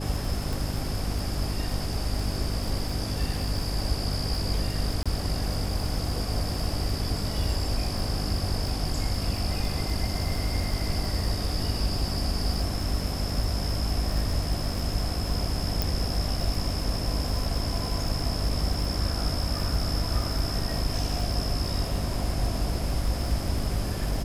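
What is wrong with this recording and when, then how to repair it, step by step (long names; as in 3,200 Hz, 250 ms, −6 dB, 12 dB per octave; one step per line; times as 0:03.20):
surface crackle 51 per second −32 dBFS
mains hum 50 Hz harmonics 6 −32 dBFS
0:00.53: click
0:05.03–0:05.06: drop-out 26 ms
0:15.82: click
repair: click removal
hum removal 50 Hz, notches 6
repair the gap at 0:05.03, 26 ms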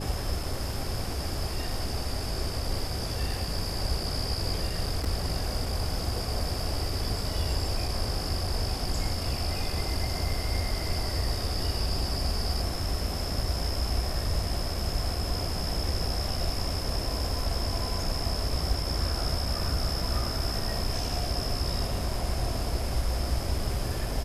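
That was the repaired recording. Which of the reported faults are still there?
none of them is left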